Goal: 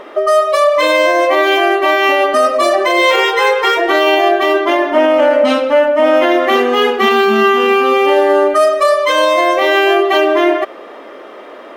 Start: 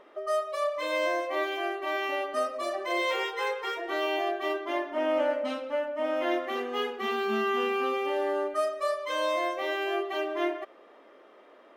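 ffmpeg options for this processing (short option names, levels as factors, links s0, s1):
-af "alimiter=level_in=15:limit=0.891:release=50:level=0:latency=1,volume=0.794"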